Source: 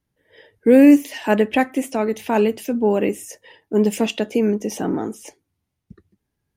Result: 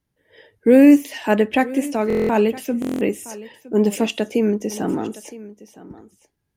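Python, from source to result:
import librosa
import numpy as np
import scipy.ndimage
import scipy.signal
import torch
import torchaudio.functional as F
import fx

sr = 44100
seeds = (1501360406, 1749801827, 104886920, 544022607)

y = x + 10.0 ** (-18.5 / 20.0) * np.pad(x, (int(964 * sr / 1000.0), 0))[:len(x)]
y = fx.buffer_glitch(y, sr, at_s=(2.08, 2.8), block=1024, repeats=8)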